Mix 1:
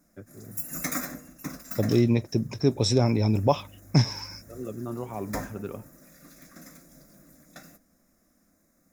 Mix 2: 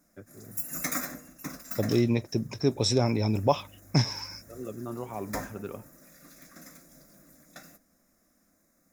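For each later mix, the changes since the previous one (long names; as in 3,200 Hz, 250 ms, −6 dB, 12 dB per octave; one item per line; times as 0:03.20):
master: add low-shelf EQ 360 Hz −4.5 dB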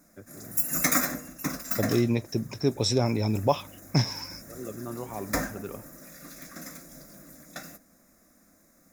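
background +7.5 dB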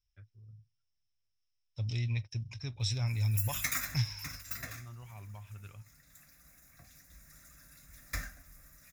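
background: entry +2.80 s
master: add drawn EQ curve 110 Hz 0 dB, 180 Hz −19 dB, 380 Hz −28 dB, 2,800 Hz −2 dB, 6,300 Hz −10 dB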